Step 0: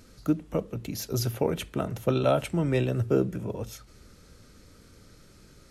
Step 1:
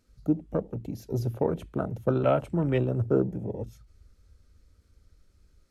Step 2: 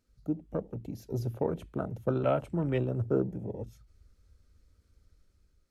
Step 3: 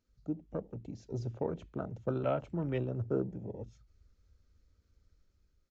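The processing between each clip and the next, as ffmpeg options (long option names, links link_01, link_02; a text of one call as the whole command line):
ffmpeg -i in.wav -af "afwtdn=0.0141" out.wav
ffmpeg -i in.wav -af "dynaudnorm=framelen=140:gausssize=7:maxgain=3.5dB,volume=-7.5dB" out.wav
ffmpeg -i in.wav -af "aresample=16000,aresample=44100,volume=-4.5dB" out.wav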